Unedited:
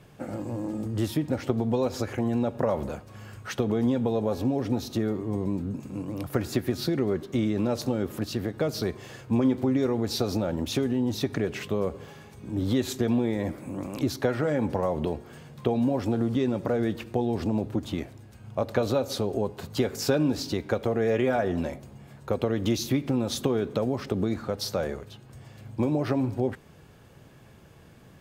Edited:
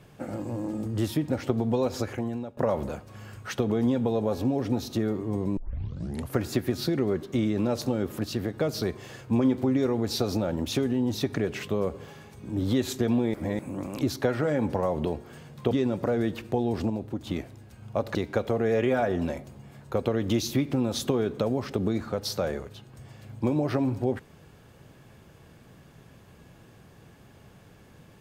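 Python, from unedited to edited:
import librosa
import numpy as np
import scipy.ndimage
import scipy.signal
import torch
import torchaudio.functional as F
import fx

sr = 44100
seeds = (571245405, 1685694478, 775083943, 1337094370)

y = fx.edit(x, sr, fx.fade_out_to(start_s=2.02, length_s=0.55, floor_db=-18.5),
    fx.tape_start(start_s=5.57, length_s=0.78),
    fx.reverse_span(start_s=13.34, length_s=0.25),
    fx.cut(start_s=15.71, length_s=0.62),
    fx.clip_gain(start_s=17.52, length_s=0.37, db=-4.5),
    fx.cut(start_s=18.77, length_s=1.74), tone=tone)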